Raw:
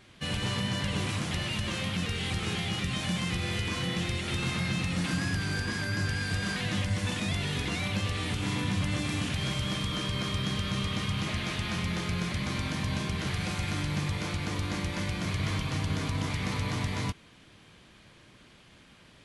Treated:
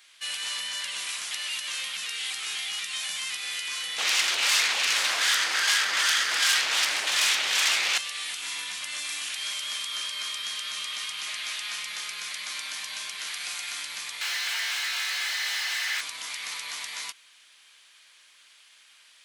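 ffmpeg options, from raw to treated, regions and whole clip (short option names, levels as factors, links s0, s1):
-filter_complex "[0:a]asettb=1/sr,asplit=3[s0][s1][s2];[s0]atrim=end=3.984[s3];[s1]atrim=start=3.98:end=7.98,asetpts=PTS-STARTPTS,afade=t=in:d=0.004:c=qsin,afade=t=out:st=3.996:d=0.004:c=qsin,aemphasis=mode=reproduction:type=75fm,acrossover=split=400[s4][s5];[s4]aeval=exprs='val(0)*(1-0.5/2+0.5/2*cos(2*PI*2.6*n/s))':c=same[s6];[s5]aeval=exprs='val(0)*(1-0.5/2-0.5/2*cos(2*PI*2.6*n/s))':c=same[s7];[s6][s7]amix=inputs=2:normalize=0,aeval=exprs='0.1*sin(PI/2*5.62*val(0)/0.1)':c=same[s8];[s2]atrim=start=7.976[s9];[s3][s8]acrossfade=d=0.004:c1=hsin:c2=qsin[s10];[s10][s9]acrossfade=d=0.004:c1=qsin:c2=hsin,asettb=1/sr,asplit=3[s11][s12][s13];[s11]atrim=end=14.214[s14];[s12]atrim=start=14.21:end=16.01,asetpts=PTS-STARTPTS,afade=t=in:d=0.004:c=qsin,afade=t=out:st=1.796:d=0.004:c=qsin,asplit=2[s15][s16];[s16]highpass=f=720:p=1,volume=79.4,asoftclip=type=tanh:threshold=0.112[s17];[s15][s17]amix=inputs=2:normalize=0,lowpass=f=1400:p=1,volume=0.501,aeval=exprs='val(0)*sin(2*PI*1900*n/s)':c=same[s18];[s13]atrim=start=16.006[s19];[s14][s18]acrossfade=d=0.004:c1=hsin:c2=qsin[s20];[s20][s19]acrossfade=d=0.004:c1=qsin:c2=hsin,highpass=1400,highshelf=f=4100:g=10.5"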